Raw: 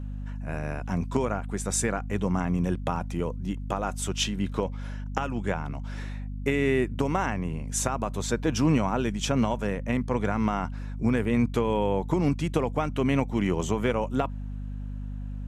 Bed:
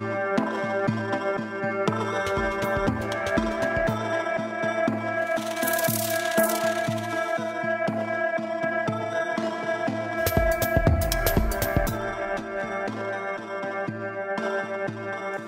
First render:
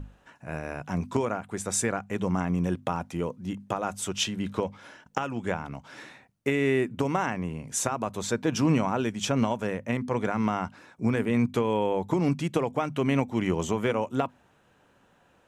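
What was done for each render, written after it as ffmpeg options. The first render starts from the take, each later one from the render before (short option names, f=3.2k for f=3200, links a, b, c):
-af "bandreject=f=50:t=h:w=6,bandreject=f=100:t=h:w=6,bandreject=f=150:t=h:w=6,bandreject=f=200:t=h:w=6,bandreject=f=250:t=h:w=6"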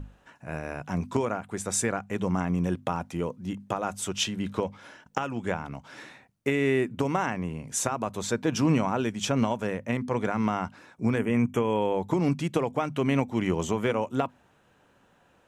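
-filter_complex "[0:a]asettb=1/sr,asplit=3[a][b][c];[a]atrim=end=11.184[d];[b]atrim=start=11.18:end=11.77,asetpts=PTS-STARTPTS,afade=t=in:d=0.004:c=qsin,afade=t=out:st=0.586:d=0.004:c=qsin,asuperstop=centerf=4300:order=12:qfactor=2.1[e];[c]atrim=start=11.766[f];[d][e]acrossfade=d=0.004:c1=hsin:c2=qsin[g];[g][f]acrossfade=d=0.004:c1=qsin:c2=hsin"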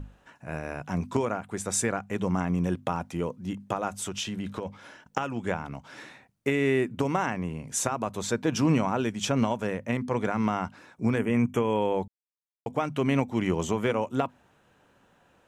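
-filter_complex "[0:a]asplit=3[a][b][c];[a]afade=t=out:st=3.88:d=0.02[d];[b]acompressor=threshold=-28dB:ratio=6:attack=3.2:release=140:knee=1:detection=peak,afade=t=in:st=3.88:d=0.02,afade=t=out:st=4.65:d=0.02[e];[c]afade=t=in:st=4.65:d=0.02[f];[d][e][f]amix=inputs=3:normalize=0,asplit=3[g][h][i];[g]atrim=end=12.08,asetpts=PTS-STARTPTS,afade=t=out:st=12.076:d=0.004:c=hsin[j];[h]atrim=start=12.08:end=12.66,asetpts=PTS-STARTPTS,volume=0[k];[i]atrim=start=12.66,asetpts=PTS-STARTPTS,afade=t=in:d=0.004:c=hsin[l];[j][k][l]concat=n=3:v=0:a=1"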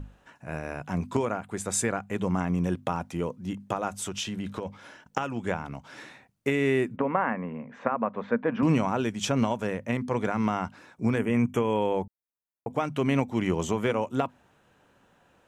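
-filter_complex "[0:a]asettb=1/sr,asplit=3[a][b][c];[a]atrim=end=0.794[d];[b]atrim=start=0.79:end=2.4,asetpts=PTS-STARTPTS,afade=t=in:d=0.004:c=qsin,afade=t=out:st=1.606:d=0.004:c=qsin,bandreject=f=5.7k:w=12[e];[c]atrim=start=2.396[f];[d][e]acrossfade=d=0.004:c1=hsin:c2=qsin[g];[g][f]acrossfade=d=0.004:c1=qsin:c2=hsin,asettb=1/sr,asplit=3[h][i][j];[h]atrim=end=6.964[k];[i]atrim=start=6.96:end=8.63,asetpts=PTS-STARTPTS,afade=t=in:d=0.004:c=qsin,afade=t=out:st=1.666:d=0.004:c=qsin,highpass=220,equalizer=f=230:t=q:w=4:g=9,equalizer=f=340:t=q:w=4:g=-8,equalizer=f=520:t=q:w=4:g=6,equalizer=f=1.1k:t=q:w=4:g=4,equalizer=f=1.8k:t=q:w=4:g=3,lowpass=f=2.2k:w=0.5412,lowpass=f=2.2k:w=1.3066[l];[j]atrim=start=8.626[m];[k][l]acrossfade=d=0.004:c1=hsin:c2=qsin[n];[n][m]acrossfade=d=0.004:c1=qsin:c2=hsin,asettb=1/sr,asplit=3[o][p][q];[o]atrim=end=12.024[r];[p]atrim=start=12.02:end=12.71,asetpts=PTS-STARTPTS,afade=t=in:d=0.004:c=qsin,afade=t=out:st=0.686:d=0.004:c=qsin,asuperstop=centerf=4500:order=4:qfactor=0.52[s];[q]atrim=start=12.706[t];[r][s]acrossfade=d=0.004:c1=hsin:c2=qsin[u];[u][t]acrossfade=d=0.004:c1=qsin:c2=hsin"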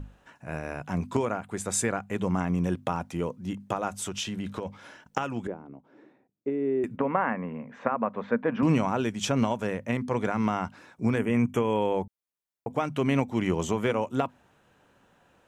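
-filter_complex "[0:a]asettb=1/sr,asplit=3[a][b][c];[a]atrim=end=5.474[d];[b]atrim=start=5.47:end=6.84,asetpts=PTS-STARTPTS,afade=t=in:d=0.004:c=qsin,afade=t=out:st=1.366:d=0.004:c=qsin,bandpass=f=340:t=q:w=2[e];[c]atrim=start=6.836[f];[d][e]acrossfade=d=0.004:c1=hsin:c2=qsin[g];[g][f]acrossfade=d=0.004:c1=qsin:c2=hsin"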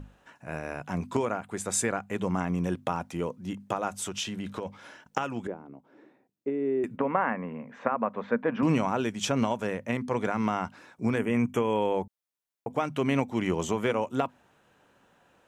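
-af "lowshelf=f=140:g=-6"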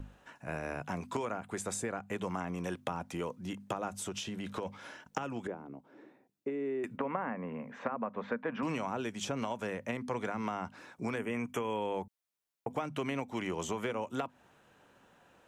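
-filter_complex "[0:a]acrossover=split=370|800[a][b][c];[a]acompressor=threshold=-40dB:ratio=4[d];[b]acompressor=threshold=-40dB:ratio=4[e];[c]acompressor=threshold=-39dB:ratio=4[f];[d][e][f]amix=inputs=3:normalize=0"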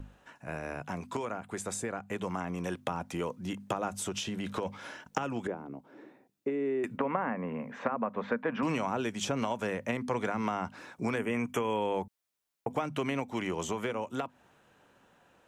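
-af "dynaudnorm=f=610:g=9:m=4dB"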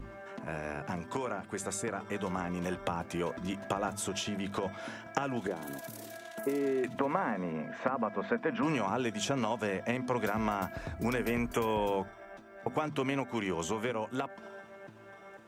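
-filter_complex "[1:a]volume=-20.5dB[a];[0:a][a]amix=inputs=2:normalize=0"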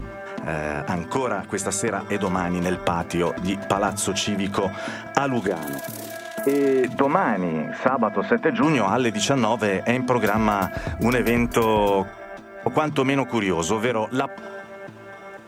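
-af "volume=11.5dB"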